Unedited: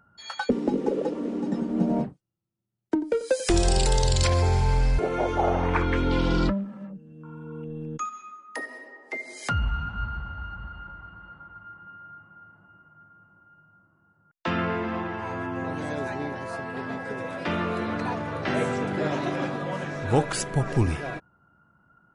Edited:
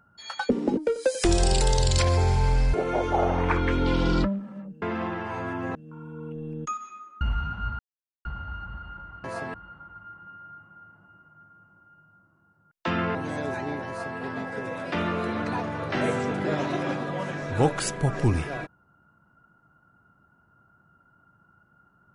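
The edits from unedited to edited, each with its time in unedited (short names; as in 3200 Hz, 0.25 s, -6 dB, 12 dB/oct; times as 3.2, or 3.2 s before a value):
0.77–3.02 cut
8.53–9.57 cut
10.15 insert silence 0.46 s
14.75–15.68 move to 7.07
16.41–16.71 copy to 11.14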